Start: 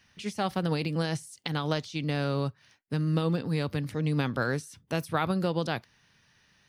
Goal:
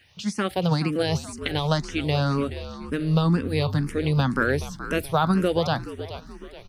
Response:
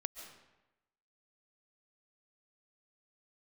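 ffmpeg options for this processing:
-filter_complex "[0:a]asplit=6[s0][s1][s2][s3][s4][s5];[s1]adelay=425,afreqshift=-66,volume=0.251[s6];[s2]adelay=850,afreqshift=-132,volume=0.116[s7];[s3]adelay=1275,afreqshift=-198,volume=0.0531[s8];[s4]adelay=1700,afreqshift=-264,volume=0.0245[s9];[s5]adelay=2125,afreqshift=-330,volume=0.0112[s10];[s0][s6][s7][s8][s9][s10]amix=inputs=6:normalize=0,asplit=2[s11][s12];[s12]afreqshift=2[s13];[s11][s13]amix=inputs=2:normalize=1,volume=2.66"

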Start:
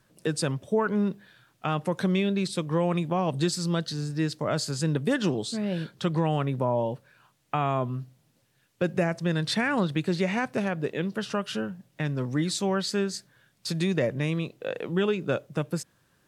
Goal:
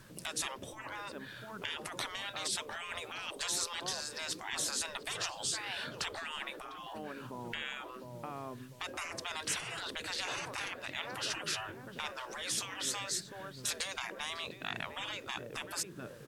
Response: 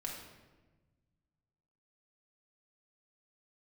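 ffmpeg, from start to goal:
-filter_complex "[0:a]equalizer=f=700:t=o:w=0.37:g=-4,asplit=2[s0][s1];[s1]acompressor=threshold=0.00794:ratio=5,volume=1.12[s2];[s0][s2]amix=inputs=2:normalize=0,asplit=2[s3][s4];[s4]adelay=701,lowpass=f=1700:p=1,volume=0.126,asplit=2[s5][s6];[s6]adelay=701,lowpass=f=1700:p=1,volume=0.39,asplit=2[s7][s8];[s8]adelay=701,lowpass=f=1700:p=1,volume=0.39[s9];[s3][s5][s7][s9]amix=inputs=4:normalize=0,afftfilt=real='re*lt(hypot(re,im),0.0447)':imag='im*lt(hypot(re,im),0.0447)':win_size=1024:overlap=0.75,volume=1.41"

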